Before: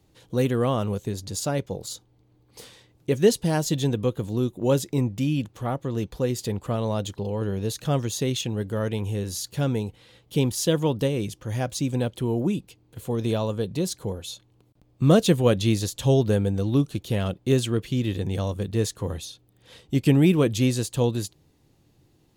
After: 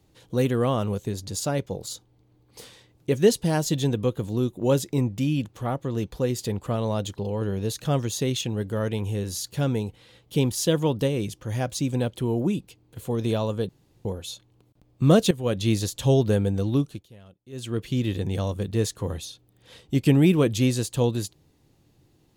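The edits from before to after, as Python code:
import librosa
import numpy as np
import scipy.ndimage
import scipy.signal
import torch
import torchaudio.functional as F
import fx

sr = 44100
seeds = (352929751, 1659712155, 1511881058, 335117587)

y = fx.edit(x, sr, fx.room_tone_fill(start_s=13.69, length_s=0.36),
    fx.fade_in_from(start_s=15.31, length_s=0.43, floor_db=-15.0),
    fx.fade_down_up(start_s=16.58, length_s=1.44, db=-23.5, fade_s=0.5, curve='qsin'), tone=tone)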